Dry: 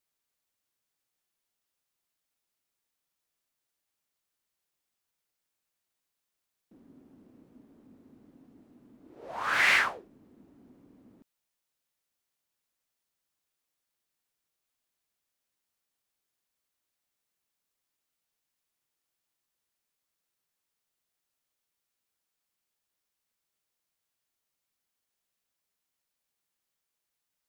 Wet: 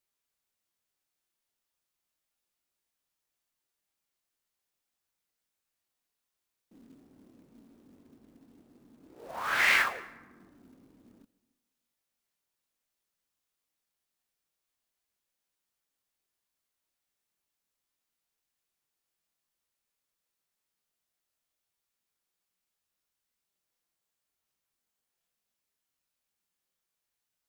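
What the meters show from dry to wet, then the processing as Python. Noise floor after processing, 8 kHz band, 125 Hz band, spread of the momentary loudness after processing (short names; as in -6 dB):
under -85 dBFS, 0.0 dB, n/a, 21 LU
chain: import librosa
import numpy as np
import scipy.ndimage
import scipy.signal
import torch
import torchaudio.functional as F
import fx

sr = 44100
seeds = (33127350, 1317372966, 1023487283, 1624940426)

y = fx.chorus_voices(x, sr, voices=6, hz=0.34, base_ms=24, depth_ms=3.0, mix_pct=35)
y = fx.quant_float(y, sr, bits=2)
y = fx.rev_plate(y, sr, seeds[0], rt60_s=1.2, hf_ratio=0.55, predelay_ms=120, drr_db=19.0)
y = y * 10.0 ** (1.5 / 20.0)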